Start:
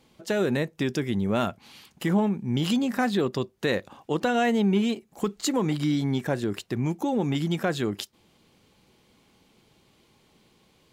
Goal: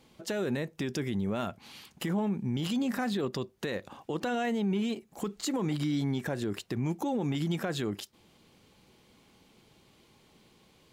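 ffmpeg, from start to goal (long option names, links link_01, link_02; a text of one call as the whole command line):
ffmpeg -i in.wav -af "alimiter=limit=-23dB:level=0:latency=1:release=88" out.wav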